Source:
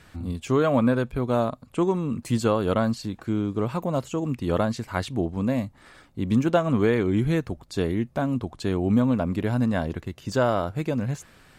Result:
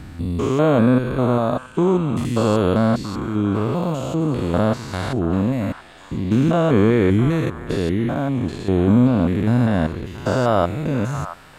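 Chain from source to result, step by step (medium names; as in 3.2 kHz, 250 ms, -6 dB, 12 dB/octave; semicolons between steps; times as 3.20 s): spectrogram pixelated in time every 200 ms; repeats whose band climbs or falls 678 ms, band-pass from 1.2 kHz, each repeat 1.4 oct, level -7.5 dB; trim +8 dB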